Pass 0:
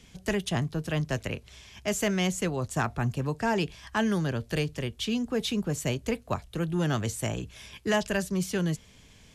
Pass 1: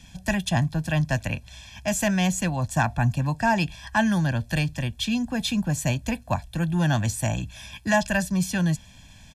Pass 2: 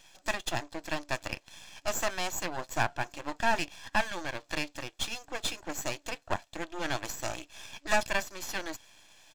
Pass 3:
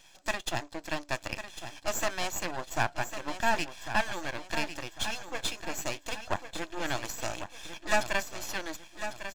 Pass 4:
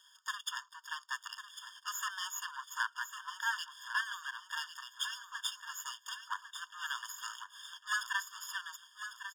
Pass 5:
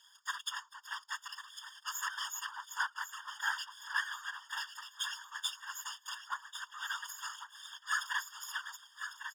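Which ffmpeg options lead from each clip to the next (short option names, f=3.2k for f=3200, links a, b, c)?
-af "aecho=1:1:1.2:0.94,volume=2dB"
-af "afftfilt=real='re*between(b*sr/4096,290,7900)':imag='im*between(b*sr/4096,290,7900)':win_size=4096:overlap=0.75,aeval=exprs='max(val(0),0)':c=same"
-af "aecho=1:1:1100|2200|3300|4400:0.316|0.12|0.0457|0.0174"
-af "afftfilt=real='re*eq(mod(floor(b*sr/1024/920),2),1)':imag='im*eq(mod(floor(b*sr/1024/920),2),1)':win_size=1024:overlap=0.75,volume=-1.5dB"
-af "afftfilt=real='hypot(re,im)*cos(2*PI*random(0))':imag='hypot(re,im)*sin(2*PI*random(1))':win_size=512:overlap=0.75,volume=6dB"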